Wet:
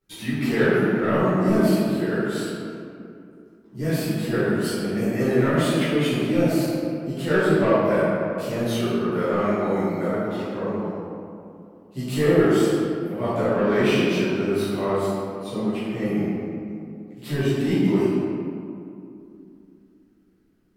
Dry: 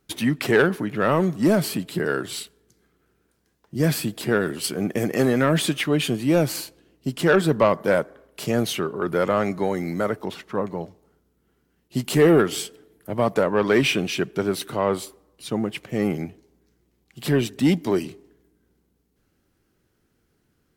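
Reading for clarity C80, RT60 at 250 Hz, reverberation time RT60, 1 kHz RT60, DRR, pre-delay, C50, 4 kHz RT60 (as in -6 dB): -1.5 dB, 3.5 s, 2.6 s, 2.5 s, -14.0 dB, 10 ms, -3.5 dB, 1.2 s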